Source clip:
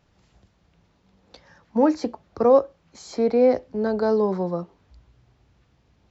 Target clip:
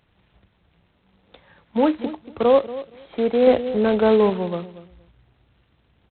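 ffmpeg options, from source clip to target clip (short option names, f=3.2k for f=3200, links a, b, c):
-filter_complex "[0:a]asplit=2[a][b];[b]adelay=234,lowpass=f=800:p=1,volume=-14dB,asplit=2[c][d];[d]adelay=234,lowpass=f=800:p=1,volume=0.21[e];[a][c][e]amix=inputs=3:normalize=0,asettb=1/sr,asplit=3[f][g][h];[f]atrim=end=3.474[i];[g]atrim=start=3.47:end=4.3,asetpts=PTS-STARTPTS,afade=t=in:d=0.004:c=qsin,afade=t=out:st=0.826:d=0.004:c=qsin,acontrast=25[j];[h]atrim=start=4.296[k];[i][j]acrossfade=d=0.004:c1=hsin:c2=qsin[l];[l][k]acrossfade=d=0.004:c1=qsin:c2=hsin" -ar 8000 -c:a adpcm_g726 -b:a 16k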